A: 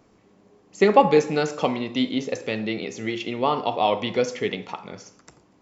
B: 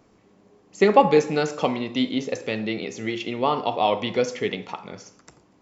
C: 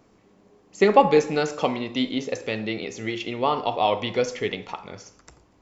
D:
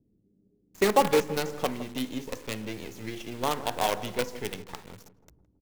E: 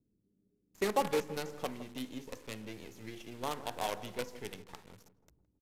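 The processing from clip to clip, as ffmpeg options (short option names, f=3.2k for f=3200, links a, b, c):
-af anull
-af "asubboost=boost=6.5:cutoff=67"
-filter_complex "[0:a]acrossover=split=350[a][b];[b]acrusher=bits=4:dc=4:mix=0:aa=0.000001[c];[a][c]amix=inputs=2:normalize=0,asplit=2[d][e];[e]adelay=163,lowpass=f=1k:p=1,volume=-13.5dB,asplit=2[f][g];[g]adelay=163,lowpass=f=1k:p=1,volume=0.53,asplit=2[h][i];[i]adelay=163,lowpass=f=1k:p=1,volume=0.53,asplit=2[j][k];[k]adelay=163,lowpass=f=1k:p=1,volume=0.53,asplit=2[l][m];[m]adelay=163,lowpass=f=1k:p=1,volume=0.53[n];[d][f][h][j][l][n]amix=inputs=6:normalize=0,volume=-6dB"
-af "aresample=32000,aresample=44100,volume=-9dB"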